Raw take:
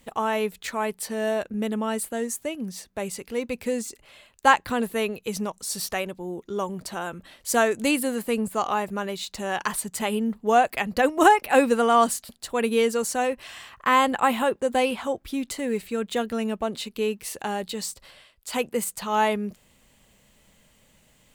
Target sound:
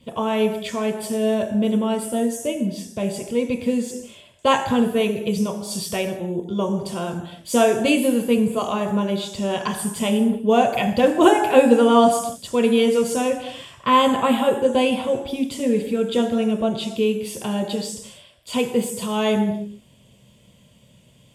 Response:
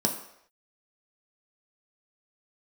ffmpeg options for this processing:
-filter_complex "[1:a]atrim=start_sample=2205,afade=t=out:st=0.24:d=0.01,atrim=end_sample=11025,asetrate=26460,aresample=44100[s0];[0:a][s0]afir=irnorm=-1:irlink=0,volume=0.316"

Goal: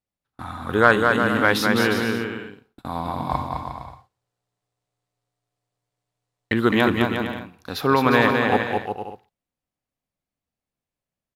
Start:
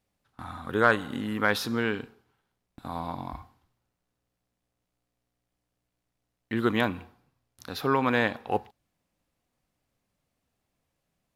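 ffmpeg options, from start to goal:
-filter_complex "[0:a]agate=range=0.126:threshold=0.00398:ratio=16:detection=peak,asplit=3[s0][s1][s2];[s0]afade=t=out:st=3.29:d=0.02[s3];[s1]equalizer=f=125:t=o:w=1:g=11,equalizer=f=250:t=o:w=1:g=-4,equalizer=f=500:t=o:w=1:g=12,equalizer=f=1000:t=o:w=1:g=8,equalizer=f=2000:t=o:w=1:g=5,equalizer=f=4000:t=o:w=1:g=8,equalizer=f=8000:t=o:w=1:g=10,afade=t=in:st=3.29:d=0.02,afade=t=out:st=6.52:d=0.02[s4];[s2]afade=t=in:st=6.52:d=0.02[s5];[s3][s4][s5]amix=inputs=3:normalize=0,aecho=1:1:210|357|459.9|531.9|582.4:0.631|0.398|0.251|0.158|0.1,volume=2"

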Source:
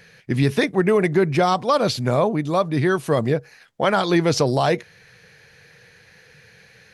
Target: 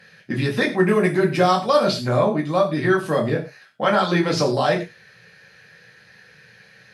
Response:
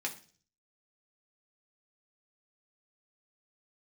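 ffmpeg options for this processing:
-filter_complex "[0:a]asettb=1/sr,asplit=3[s0][s1][s2];[s0]atrim=end=0.734[s3];[s1]atrim=start=0.73:end=1.84,asetpts=PTS-STARTPTS,afade=t=in:d=0.004:c=qsin,afade=t=out:st=1.106:d=0.004:c=qsin,highshelf=f=8300:g=10.5[s4];[s2]atrim=start=1.836[s5];[s3][s4]acrossfade=d=0.004:c1=hsin:c2=qsin[s6];[s6][s5]acrossfade=d=0.004:c1=qsin:c2=hsin[s7];[1:a]atrim=start_sample=2205,afade=t=out:st=0.14:d=0.01,atrim=end_sample=6615,asetrate=31752,aresample=44100[s8];[s7][s8]afir=irnorm=-1:irlink=0,volume=0.631"

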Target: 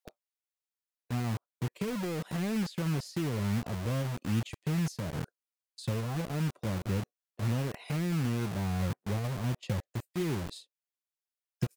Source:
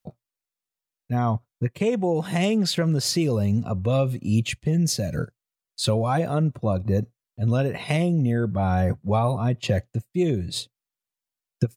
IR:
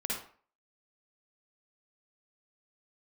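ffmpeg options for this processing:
-filter_complex "[0:a]acrossover=split=390[s0][s1];[s0]acrusher=bits=4:mix=0:aa=0.000001[s2];[s1]acompressor=threshold=0.0141:ratio=8[s3];[s2][s3]amix=inputs=2:normalize=0,volume=0.376"

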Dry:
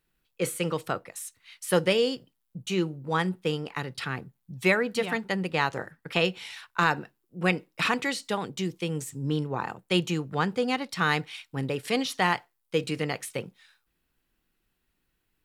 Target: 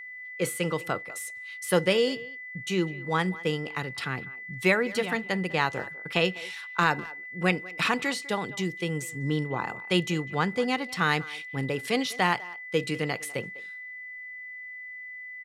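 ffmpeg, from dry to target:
-filter_complex "[0:a]aeval=exprs='val(0)+0.0112*sin(2*PI*2000*n/s)':c=same,asplit=2[s0][s1];[s1]adelay=200,highpass=300,lowpass=3400,asoftclip=type=hard:threshold=0.141,volume=0.126[s2];[s0][s2]amix=inputs=2:normalize=0"

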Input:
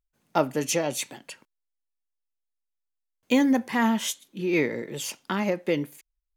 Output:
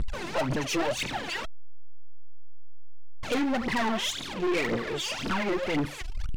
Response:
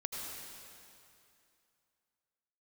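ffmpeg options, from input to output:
-af "aeval=exprs='val(0)+0.5*0.0355*sgn(val(0))':c=same,lowpass=3900,aphaser=in_gain=1:out_gain=1:delay=3.1:decay=0.78:speed=1.9:type=triangular,aeval=exprs='(tanh(15.8*val(0)+0.35)-tanh(0.35))/15.8':c=same"

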